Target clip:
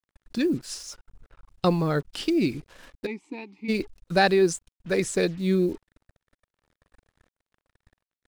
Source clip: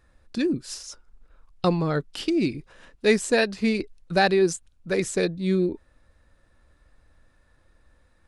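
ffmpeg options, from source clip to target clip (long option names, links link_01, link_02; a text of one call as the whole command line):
ffmpeg -i in.wav -filter_complex "[0:a]acrusher=bits=7:mix=0:aa=0.5,asplit=3[link_01][link_02][link_03];[link_01]afade=type=out:start_time=3.05:duration=0.02[link_04];[link_02]asplit=3[link_05][link_06][link_07];[link_05]bandpass=frequency=300:width_type=q:width=8,volume=0dB[link_08];[link_06]bandpass=frequency=870:width_type=q:width=8,volume=-6dB[link_09];[link_07]bandpass=frequency=2240:width_type=q:width=8,volume=-9dB[link_10];[link_08][link_09][link_10]amix=inputs=3:normalize=0,afade=type=in:start_time=3.05:duration=0.02,afade=type=out:start_time=3.68:duration=0.02[link_11];[link_03]afade=type=in:start_time=3.68:duration=0.02[link_12];[link_04][link_11][link_12]amix=inputs=3:normalize=0" out.wav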